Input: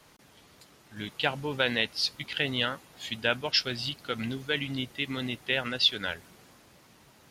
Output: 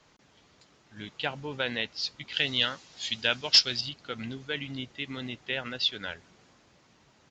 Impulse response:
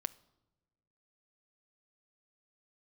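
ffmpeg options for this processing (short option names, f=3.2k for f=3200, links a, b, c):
-filter_complex "[0:a]asettb=1/sr,asplit=3[a][b][c];[a]atrim=end=2.334[d];[b]atrim=start=2.33:end=3.81,asetpts=PTS-STARTPTS,afade=t=in:d=0.004:c=qsin,afade=t=out:st=1.476:d=0.004:c=qsin,equalizer=f=5.1k:w=0.7:g=12.5[e];[c]atrim=start=3.806[f];[d][e]acrossfade=d=0.004:c1=hsin:c2=qsin[g];[g][f]acrossfade=d=0.004:c1=qsin:c2=hsin,aeval=exprs='0.501*(abs(mod(val(0)/0.501+3,4)-2)-1)':c=same,aresample=16000,aresample=44100,volume=-4dB"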